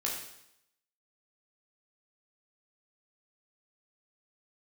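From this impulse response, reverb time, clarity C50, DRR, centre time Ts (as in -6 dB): 0.80 s, 3.5 dB, -3.5 dB, 44 ms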